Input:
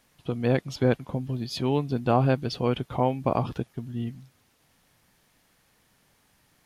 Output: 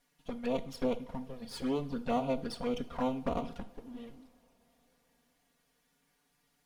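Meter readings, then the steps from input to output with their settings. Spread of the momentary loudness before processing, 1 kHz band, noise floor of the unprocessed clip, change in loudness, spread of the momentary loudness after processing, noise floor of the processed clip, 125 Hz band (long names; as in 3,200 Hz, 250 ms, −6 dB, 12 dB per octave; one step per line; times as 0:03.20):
11 LU, −9.0 dB, −66 dBFS, −8.5 dB, 14 LU, −76 dBFS, −18.5 dB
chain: lower of the sound and its delayed copy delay 4.2 ms
flanger swept by the level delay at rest 7 ms, full sweep at −22 dBFS
coupled-rooms reverb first 0.45 s, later 4.5 s, from −21 dB, DRR 10.5 dB
level −5.5 dB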